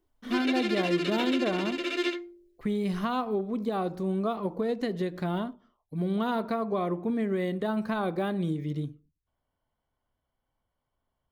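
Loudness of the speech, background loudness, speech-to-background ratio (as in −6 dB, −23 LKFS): −30.5 LKFS, −31.5 LKFS, 1.0 dB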